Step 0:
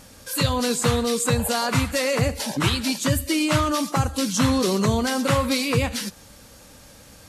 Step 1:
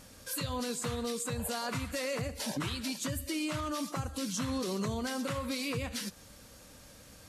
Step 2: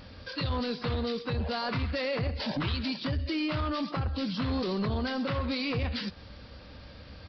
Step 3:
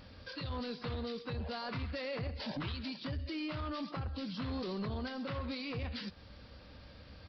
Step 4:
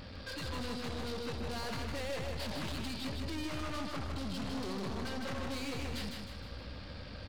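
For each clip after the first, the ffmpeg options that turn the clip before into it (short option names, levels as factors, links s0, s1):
-af "bandreject=f=840:w=14,alimiter=limit=0.112:level=0:latency=1:release=229,volume=0.473"
-af "equalizer=f=72:w=1.5:g=8.5,aresample=11025,asoftclip=type=tanh:threshold=0.0335,aresample=44100,volume=1.88"
-af "alimiter=level_in=1.33:limit=0.0631:level=0:latency=1:release=434,volume=0.75,volume=0.501"
-af "aeval=exprs='(tanh(224*val(0)+0.35)-tanh(0.35))/224':c=same,aecho=1:1:155|310|465|620|775|930:0.631|0.284|0.128|0.0575|0.0259|0.0116,volume=2.51"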